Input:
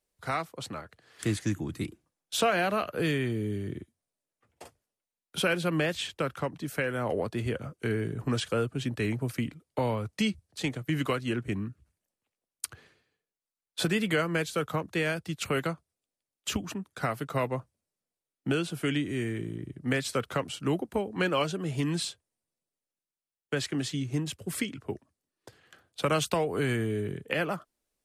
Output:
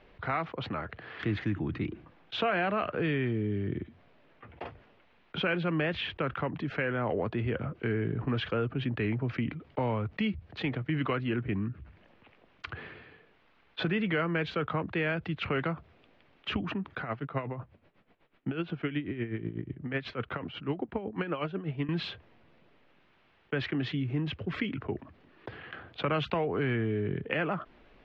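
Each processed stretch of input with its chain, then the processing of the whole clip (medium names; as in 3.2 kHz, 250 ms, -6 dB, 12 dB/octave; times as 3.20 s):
17.00–21.89 s: distance through air 66 m + logarithmic tremolo 8.1 Hz, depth 20 dB
whole clip: inverse Chebyshev low-pass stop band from 8.7 kHz, stop band 60 dB; peaking EQ 540 Hz -2.5 dB 0.41 oct; level flattener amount 50%; trim -3.5 dB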